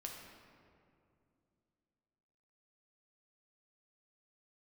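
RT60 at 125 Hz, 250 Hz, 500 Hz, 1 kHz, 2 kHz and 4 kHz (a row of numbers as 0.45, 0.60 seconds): 3.2, 3.3, 2.8, 2.2, 1.8, 1.3 seconds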